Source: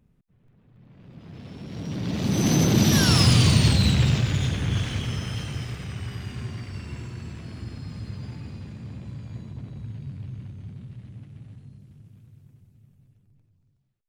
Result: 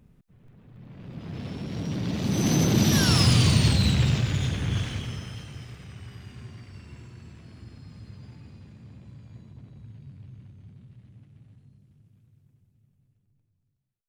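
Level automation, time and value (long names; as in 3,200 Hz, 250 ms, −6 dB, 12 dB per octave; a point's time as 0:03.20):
0:01.45 +6 dB
0:02.21 −2 dB
0:04.80 −2 dB
0:05.46 −9 dB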